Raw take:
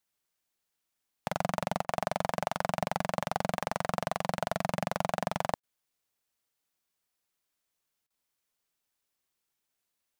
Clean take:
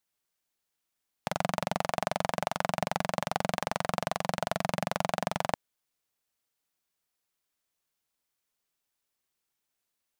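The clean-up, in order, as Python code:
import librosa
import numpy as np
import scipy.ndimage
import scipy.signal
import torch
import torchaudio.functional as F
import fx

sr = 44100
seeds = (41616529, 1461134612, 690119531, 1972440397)

y = fx.fix_declip(x, sr, threshold_db=-15.0)
y = fx.fix_interpolate(y, sr, at_s=(1.85, 5.6, 8.07), length_ms=31.0)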